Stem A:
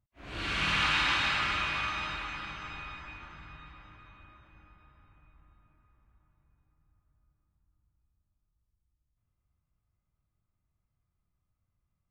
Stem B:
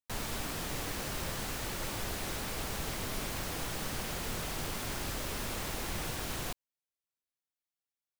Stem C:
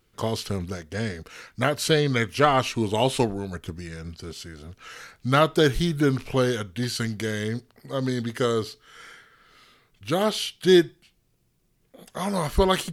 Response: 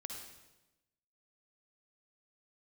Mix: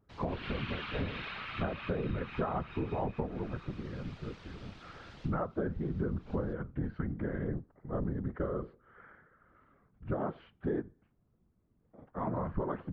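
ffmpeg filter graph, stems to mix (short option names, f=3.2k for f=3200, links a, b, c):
-filter_complex "[0:a]volume=2dB[a];[1:a]aemphasis=mode=production:type=50kf,volume=-10dB[b];[2:a]lowpass=f=1.4k:w=0.5412,lowpass=f=1.4k:w=1.3066,volume=1dB,asplit=2[c][d];[d]apad=whole_len=361372[e];[b][e]sidechaincompress=threshold=-22dB:ratio=8:attack=8.4:release=1410[f];[a][f]amix=inputs=2:normalize=0,lowpass=f=4k:w=0.5412,lowpass=f=4k:w=1.3066,acompressor=threshold=-33dB:ratio=6,volume=0dB[g];[c][g]amix=inputs=2:normalize=0,equalizer=f=130:t=o:w=0.3:g=7.5,afftfilt=real='hypot(re,im)*cos(2*PI*random(0))':imag='hypot(re,im)*sin(2*PI*random(1))':win_size=512:overlap=0.75,acompressor=threshold=-30dB:ratio=10"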